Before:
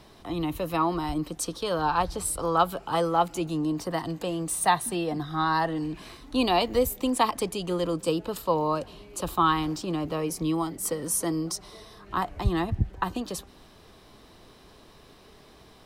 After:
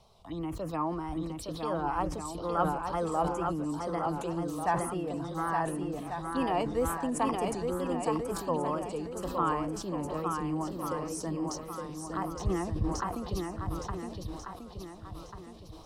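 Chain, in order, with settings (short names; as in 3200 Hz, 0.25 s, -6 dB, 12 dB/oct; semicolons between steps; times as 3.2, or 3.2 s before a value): high shelf 11000 Hz -10.5 dB; envelope phaser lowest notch 250 Hz, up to 3900 Hz, full sweep at -26 dBFS; wow and flutter 81 cents; on a send: swung echo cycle 1.441 s, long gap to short 1.5:1, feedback 35%, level -4.5 dB; on the sum: sustainer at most 59 dB/s; gain -6.5 dB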